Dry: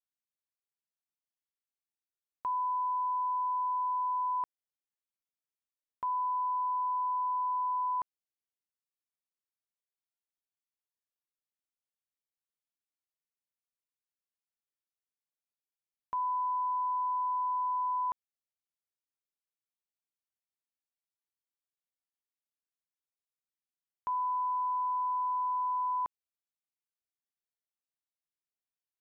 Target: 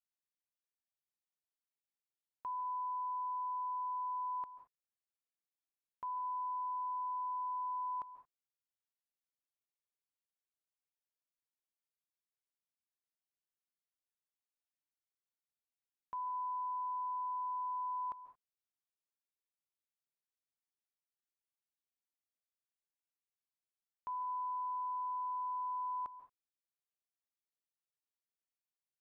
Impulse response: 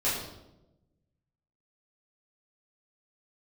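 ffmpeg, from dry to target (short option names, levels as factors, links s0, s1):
-filter_complex "[0:a]asplit=2[s0][s1];[1:a]atrim=start_sample=2205,atrim=end_sample=4410,adelay=135[s2];[s1][s2]afir=irnorm=-1:irlink=0,volume=0.0944[s3];[s0][s3]amix=inputs=2:normalize=0,volume=0.398"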